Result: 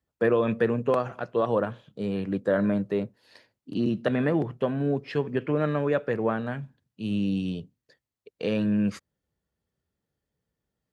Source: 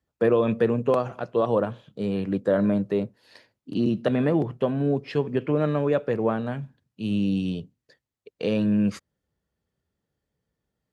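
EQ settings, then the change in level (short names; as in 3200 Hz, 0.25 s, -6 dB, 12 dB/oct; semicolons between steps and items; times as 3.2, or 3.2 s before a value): dynamic EQ 1700 Hz, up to +6 dB, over -44 dBFS, Q 1.6; -2.5 dB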